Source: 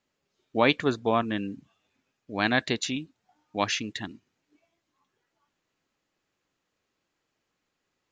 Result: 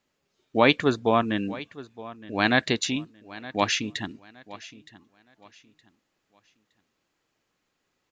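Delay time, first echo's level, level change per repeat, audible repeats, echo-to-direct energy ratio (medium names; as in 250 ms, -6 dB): 917 ms, -18.0 dB, -11.0 dB, 2, -17.5 dB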